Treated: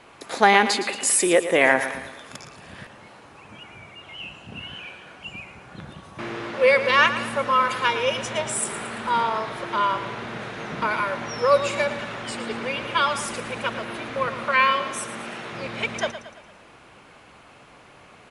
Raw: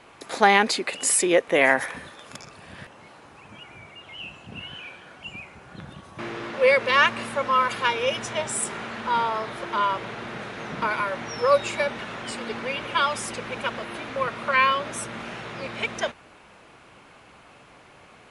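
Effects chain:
0:14.44–0:15.53: parametric band 78 Hz −14.5 dB 1.3 octaves
on a send: repeating echo 113 ms, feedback 49%, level −12 dB
on the sum: level +1 dB

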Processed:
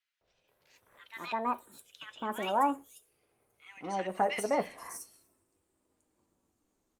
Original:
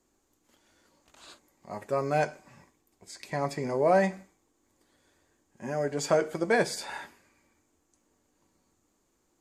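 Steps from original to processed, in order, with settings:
gliding playback speed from 178% → 91%
three-band delay without the direct sound mids, lows, highs 210/480 ms, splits 1,800/5,700 Hz
level −3.5 dB
Opus 48 kbit/s 48,000 Hz

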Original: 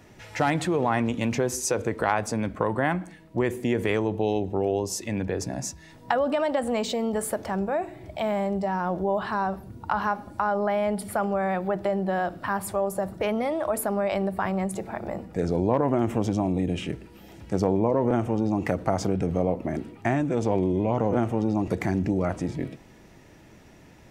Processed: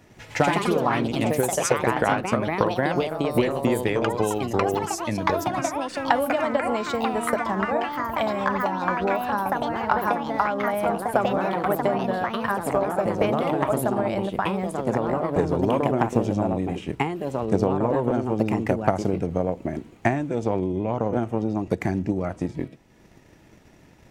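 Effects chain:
transient designer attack +8 dB, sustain −5 dB
delay with pitch and tempo change per echo 138 ms, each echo +3 semitones, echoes 3
level −2 dB

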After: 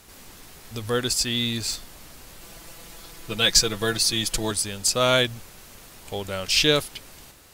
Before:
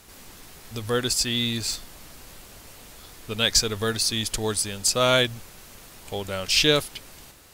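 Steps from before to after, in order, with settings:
0:02.41–0:04.51: comb filter 6 ms, depth 82%

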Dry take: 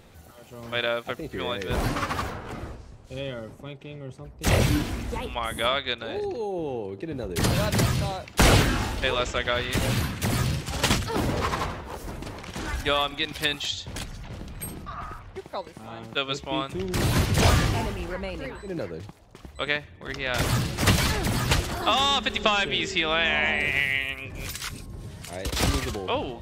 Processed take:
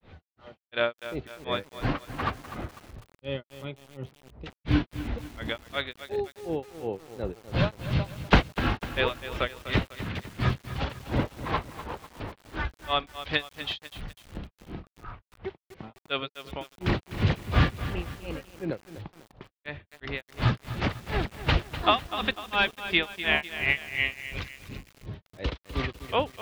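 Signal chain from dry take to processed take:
low-pass filter 3,800 Hz 24 dB per octave
granular cloud 226 ms, grains 2.8 per second, pitch spread up and down by 0 semitones
feedback echo at a low word length 249 ms, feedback 55%, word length 7 bits, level −11.5 dB
level +2.5 dB

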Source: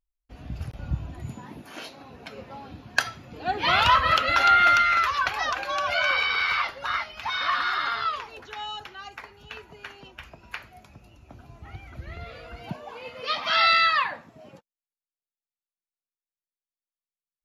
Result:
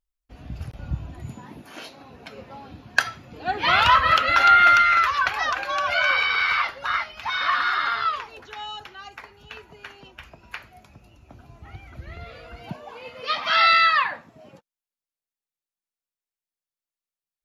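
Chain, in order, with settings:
dynamic equaliser 1,600 Hz, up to +4 dB, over −34 dBFS, Q 0.97

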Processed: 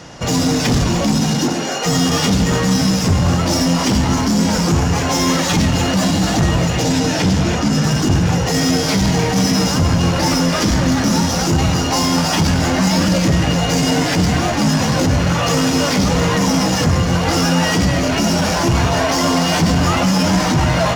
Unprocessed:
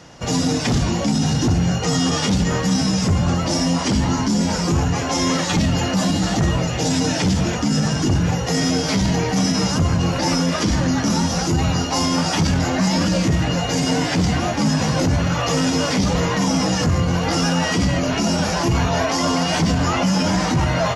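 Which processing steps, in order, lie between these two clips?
0:01.20–0:01.85: high-pass filter 120 Hz → 480 Hz 24 dB per octave
in parallel at −5 dB: wave folding −24 dBFS
0:06.82–0:07.84: on the sum: high-shelf EQ 9,100 Hz −9 dB
echo with a time of its own for lows and highs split 2,000 Hz, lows 139 ms, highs 302 ms, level −11.5 dB
level +3 dB

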